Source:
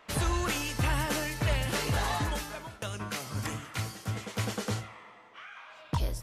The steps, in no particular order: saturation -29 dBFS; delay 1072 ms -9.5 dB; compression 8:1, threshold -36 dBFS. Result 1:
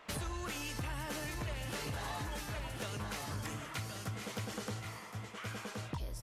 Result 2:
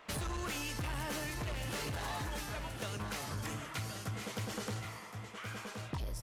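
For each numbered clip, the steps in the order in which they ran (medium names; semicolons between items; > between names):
delay > compression > saturation; saturation > delay > compression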